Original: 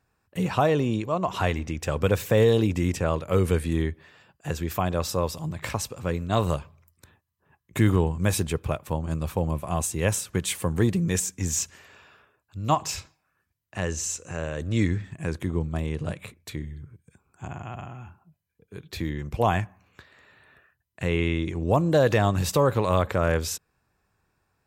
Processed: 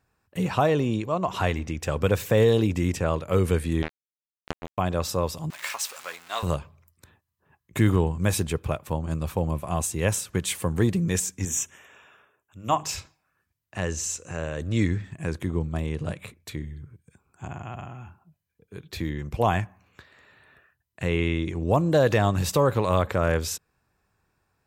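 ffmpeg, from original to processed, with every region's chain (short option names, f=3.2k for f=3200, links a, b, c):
-filter_complex "[0:a]asettb=1/sr,asplit=3[a][b][c];[a]atrim=end=3.824[d];[b]atrim=start=3.82:end=4.78,asetpts=PTS-STARTPTS,afade=t=in:d=0.004:c=qsin,afade=t=out:st=0.956:d=0.004:c=qsin,aeval=exprs='val(0)+0.5*0.0168*sgn(val(0))':c=same,highshelf=f=5k:g=-6,acrusher=bits=2:mix=0:aa=0.5[e];[c]atrim=start=4.776[f];[d][e]acrossfade=d=0.004:c1=hsin:c2=qsin[g];[g][f]acrossfade=d=0.004:c1=qsin:c2=hsin,asettb=1/sr,asplit=3[h][i][j];[h]atrim=end=5.504[k];[i]atrim=start=5.5:end=6.43,asetpts=PTS-STARTPTS,afade=t=in:d=0.004:c=qsin,afade=t=out:st=0.926:d=0.004:c=qsin,aeval=exprs='val(0)+0.5*0.0224*sgn(val(0))':c=same,highpass=1.1k,asplit=2[l][m];[m]adelay=13,volume=-11dB[n];[l][n]amix=inputs=2:normalize=0,atrim=end_sample=41013[o];[j]atrim=start=6.426[p];[k][o]acrossfade=d=0.004:c1=hsin:c2=qsin[q];[q][p]acrossfade=d=0.004:c1=qsin:c2=hsin,asettb=1/sr,asplit=3[r][s][t];[r]atrim=end=11.454[u];[s]atrim=start=11.45:end=12.84,asetpts=PTS-STARTPTS,afade=t=in:d=0.004:c=qsin,afade=t=out:st=1.386:d=0.004:c=qsin,asuperstop=centerf=4500:order=8:qfactor=2.4,lowshelf=f=130:g=-10.5,bandreject=f=50:t=h:w=6,bandreject=f=100:t=h:w=6,bandreject=f=150:t=h:w=6,bandreject=f=200:t=h:w=6,bandreject=f=250:t=h:w=6,bandreject=f=300:t=h:w=6,bandreject=f=350:t=h:w=6,bandreject=f=400:t=h:w=6,bandreject=f=450:t=h:w=6[v];[t]atrim=start=12.836[w];[u][v]acrossfade=d=0.004:c1=hsin:c2=qsin[x];[x][w]acrossfade=d=0.004:c1=qsin:c2=hsin"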